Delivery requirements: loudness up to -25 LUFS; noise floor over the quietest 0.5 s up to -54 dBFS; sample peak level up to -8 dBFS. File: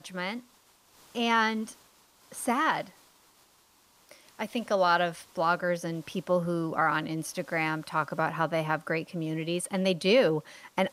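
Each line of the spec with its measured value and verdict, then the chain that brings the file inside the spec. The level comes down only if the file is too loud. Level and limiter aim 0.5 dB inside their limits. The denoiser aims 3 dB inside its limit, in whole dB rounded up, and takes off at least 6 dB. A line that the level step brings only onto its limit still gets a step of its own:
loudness -29.0 LUFS: OK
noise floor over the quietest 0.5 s -63 dBFS: OK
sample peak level -12.5 dBFS: OK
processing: none

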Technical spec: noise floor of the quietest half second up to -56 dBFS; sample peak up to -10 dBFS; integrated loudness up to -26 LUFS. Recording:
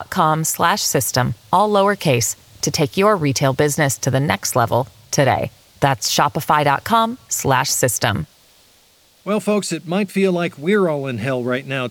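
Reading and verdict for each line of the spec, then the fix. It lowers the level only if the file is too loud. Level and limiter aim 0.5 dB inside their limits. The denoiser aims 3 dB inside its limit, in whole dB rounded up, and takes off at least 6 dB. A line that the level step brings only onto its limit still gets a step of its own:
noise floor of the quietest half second -53 dBFS: fail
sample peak -2.5 dBFS: fail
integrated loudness -18.0 LUFS: fail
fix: gain -8.5 dB

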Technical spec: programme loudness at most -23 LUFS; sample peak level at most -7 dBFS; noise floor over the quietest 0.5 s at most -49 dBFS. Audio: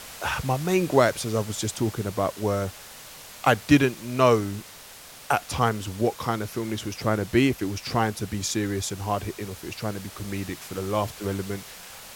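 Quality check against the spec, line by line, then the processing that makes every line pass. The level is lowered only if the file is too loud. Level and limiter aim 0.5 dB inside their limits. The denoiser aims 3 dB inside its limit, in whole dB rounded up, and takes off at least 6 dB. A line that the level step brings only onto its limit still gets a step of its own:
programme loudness -26.0 LUFS: OK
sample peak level -5.5 dBFS: fail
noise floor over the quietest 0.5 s -45 dBFS: fail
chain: denoiser 7 dB, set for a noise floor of -45 dBFS; limiter -7.5 dBFS

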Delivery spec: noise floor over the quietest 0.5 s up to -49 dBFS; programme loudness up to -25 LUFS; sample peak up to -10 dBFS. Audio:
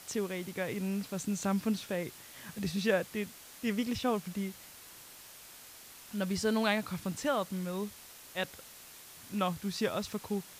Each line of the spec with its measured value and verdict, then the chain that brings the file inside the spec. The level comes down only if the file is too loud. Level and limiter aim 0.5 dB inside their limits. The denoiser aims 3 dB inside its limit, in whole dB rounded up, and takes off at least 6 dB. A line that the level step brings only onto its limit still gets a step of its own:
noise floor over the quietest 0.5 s -52 dBFS: OK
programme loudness -34.5 LUFS: OK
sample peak -15.0 dBFS: OK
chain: none

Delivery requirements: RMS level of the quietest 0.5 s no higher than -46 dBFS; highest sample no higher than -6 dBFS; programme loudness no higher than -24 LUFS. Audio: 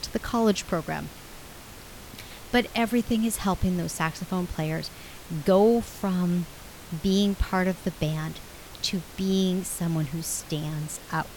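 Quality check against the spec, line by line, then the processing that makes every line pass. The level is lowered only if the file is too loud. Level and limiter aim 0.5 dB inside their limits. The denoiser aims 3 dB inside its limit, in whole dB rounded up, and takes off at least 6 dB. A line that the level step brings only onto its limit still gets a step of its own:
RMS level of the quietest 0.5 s -44 dBFS: fail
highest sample -9.5 dBFS: OK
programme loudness -27.0 LUFS: OK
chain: denoiser 6 dB, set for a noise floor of -44 dBFS

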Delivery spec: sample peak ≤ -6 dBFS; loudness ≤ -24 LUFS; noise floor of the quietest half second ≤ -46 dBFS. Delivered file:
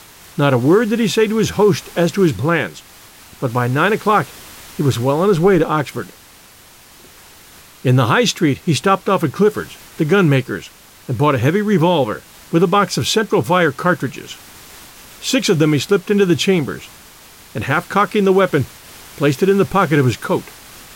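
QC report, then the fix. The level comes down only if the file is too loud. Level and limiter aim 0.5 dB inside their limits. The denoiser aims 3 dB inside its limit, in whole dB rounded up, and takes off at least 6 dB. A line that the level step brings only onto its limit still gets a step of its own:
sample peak -3.5 dBFS: fail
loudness -16.0 LUFS: fail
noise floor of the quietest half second -44 dBFS: fail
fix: gain -8.5 dB

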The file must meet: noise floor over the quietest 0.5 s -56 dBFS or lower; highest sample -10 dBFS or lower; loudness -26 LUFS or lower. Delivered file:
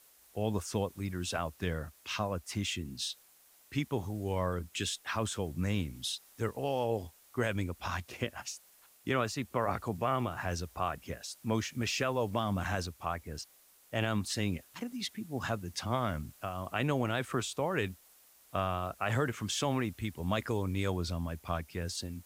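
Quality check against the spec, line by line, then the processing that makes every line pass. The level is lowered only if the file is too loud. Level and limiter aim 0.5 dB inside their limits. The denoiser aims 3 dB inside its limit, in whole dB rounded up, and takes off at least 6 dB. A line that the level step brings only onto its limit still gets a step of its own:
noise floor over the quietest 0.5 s -63 dBFS: OK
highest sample -17.0 dBFS: OK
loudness -35.0 LUFS: OK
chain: none

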